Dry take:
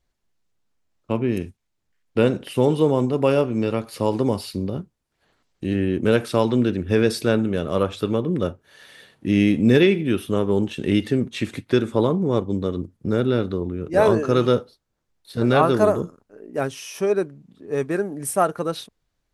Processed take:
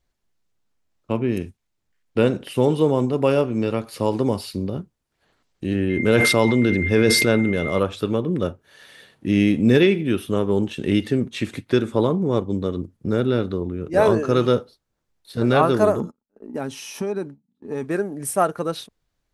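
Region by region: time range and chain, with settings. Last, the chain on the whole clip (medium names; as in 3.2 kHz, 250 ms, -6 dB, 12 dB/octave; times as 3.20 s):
5.89–7.78 s: whistle 2.1 kHz -31 dBFS + decay stretcher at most 21 dB/s
16.00–17.84 s: gate -42 dBFS, range -27 dB + compression 3:1, threshold -26 dBFS + small resonant body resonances 230/860/4000 Hz, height 11 dB
whole clip: none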